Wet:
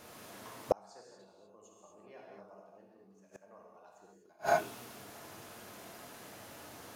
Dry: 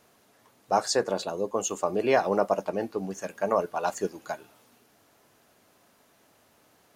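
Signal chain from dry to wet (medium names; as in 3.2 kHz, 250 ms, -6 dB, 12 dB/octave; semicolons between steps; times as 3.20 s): gated-style reverb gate 270 ms flat, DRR -3 dB; inverted gate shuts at -22 dBFS, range -41 dB; trim +7 dB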